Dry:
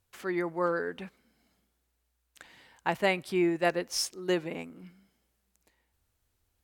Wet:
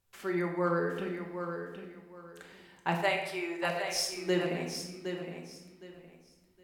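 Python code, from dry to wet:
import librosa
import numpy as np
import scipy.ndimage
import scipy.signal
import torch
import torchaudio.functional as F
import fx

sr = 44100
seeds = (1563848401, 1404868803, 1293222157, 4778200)

y = fx.bessel_highpass(x, sr, hz=630.0, order=8, at=(2.94, 3.9), fade=0.02)
y = fx.echo_feedback(y, sr, ms=764, feedback_pct=23, wet_db=-8)
y = fx.room_shoebox(y, sr, seeds[0], volume_m3=510.0, walls='mixed', distance_m=1.2)
y = F.gain(torch.from_numpy(y), -3.0).numpy()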